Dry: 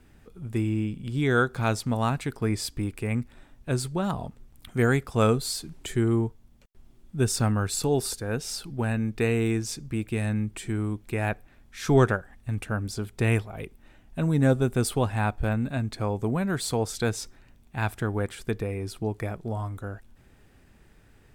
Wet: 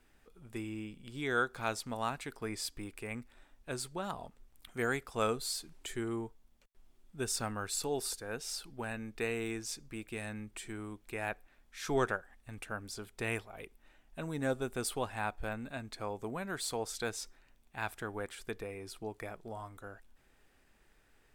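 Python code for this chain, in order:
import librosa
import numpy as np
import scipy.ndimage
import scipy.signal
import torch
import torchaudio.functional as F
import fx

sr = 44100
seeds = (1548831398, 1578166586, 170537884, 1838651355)

y = fx.peak_eq(x, sr, hz=110.0, db=-13.5, octaves=2.8)
y = y * 10.0 ** (-6.0 / 20.0)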